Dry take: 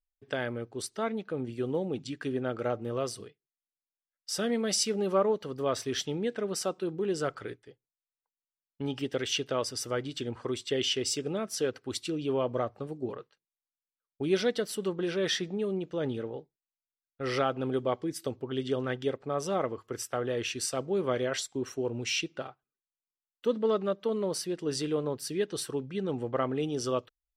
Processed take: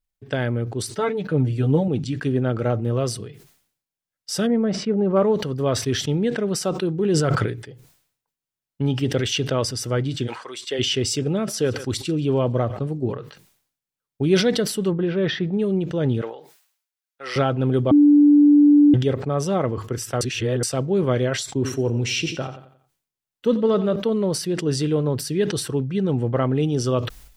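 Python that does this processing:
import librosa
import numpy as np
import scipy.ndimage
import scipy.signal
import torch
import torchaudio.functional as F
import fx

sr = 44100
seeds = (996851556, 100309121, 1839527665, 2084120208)

y = fx.comb(x, sr, ms=6.8, depth=0.75, at=(0.94, 1.88))
y = fx.lowpass(y, sr, hz=1300.0, slope=12, at=(4.46, 5.15), fade=0.02)
y = fx.sustainer(y, sr, db_per_s=25.0, at=(6.96, 7.46))
y = fx.highpass(y, sr, hz=fx.line((10.26, 1400.0), (10.78, 440.0)), slope=12, at=(10.26, 10.78), fade=0.02)
y = fx.echo_thinned(y, sr, ms=138, feedback_pct=47, hz=740.0, wet_db=-23.5, at=(11.42, 12.92), fade=0.02)
y = fx.air_absorb(y, sr, metres=310.0, at=(14.9, 15.52), fade=0.02)
y = fx.highpass(y, sr, hz=860.0, slope=12, at=(16.21, 17.36))
y = fx.echo_feedback(y, sr, ms=89, feedback_pct=41, wet_db=-14.5, at=(21.51, 23.96))
y = fx.edit(y, sr, fx.bleep(start_s=17.91, length_s=1.03, hz=292.0, db=-18.5),
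    fx.reverse_span(start_s=20.21, length_s=0.42), tone=tone)
y = fx.peak_eq(y, sr, hz=120.0, db=11.5, octaves=1.8)
y = fx.notch(y, sr, hz=1200.0, q=24.0)
y = fx.sustainer(y, sr, db_per_s=94.0)
y = y * librosa.db_to_amplitude(5.5)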